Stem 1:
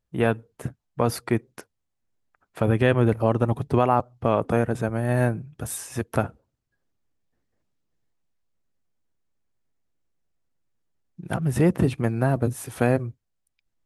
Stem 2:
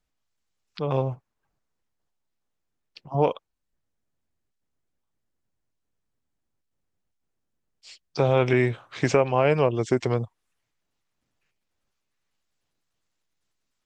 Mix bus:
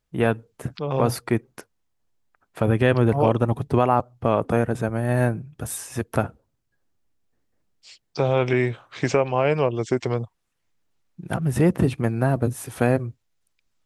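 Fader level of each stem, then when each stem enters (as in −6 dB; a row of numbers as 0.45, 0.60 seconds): +1.0, 0.0 decibels; 0.00, 0.00 seconds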